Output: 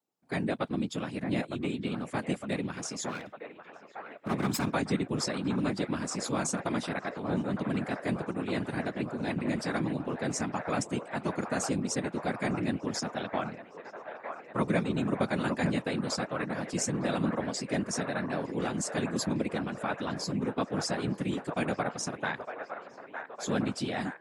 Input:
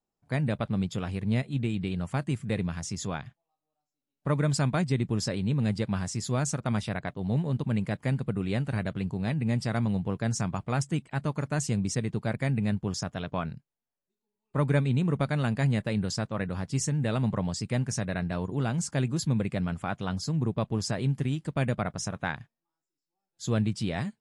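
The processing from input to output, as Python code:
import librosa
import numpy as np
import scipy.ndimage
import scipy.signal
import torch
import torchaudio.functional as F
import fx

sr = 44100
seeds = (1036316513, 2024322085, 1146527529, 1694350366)

p1 = fx.lower_of_two(x, sr, delay_ms=0.78, at=(3.07, 4.74))
p2 = p1 + fx.echo_wet_bandpass(p1, sr, ms=908, feedback_pct=71, hz=1000.0, wet_db=-6.5, dry=0)
p3 = fx.whisperise(p2, sr, seeds[0])
y = scipy.signal.sosfilt(scipy.signal.butter(2, 200.0, 'highpass', fs=sr, output='sos'), p3)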